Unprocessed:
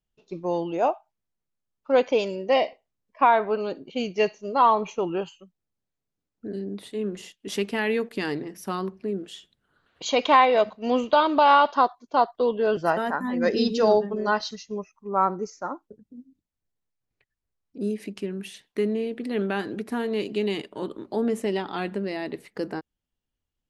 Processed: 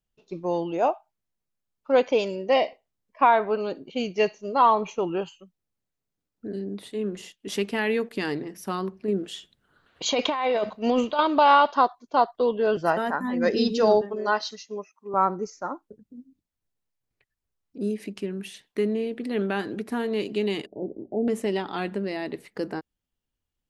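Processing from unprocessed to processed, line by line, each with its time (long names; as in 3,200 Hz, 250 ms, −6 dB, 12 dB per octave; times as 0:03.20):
0:09.08–0:11.19: compressor whose output falls as the input rises −23 dBFS
0:14.01–0:15.14: high-pass filter 300 Hz
0:20.66–0:21.28: elliptic low-pass filter 730 Hz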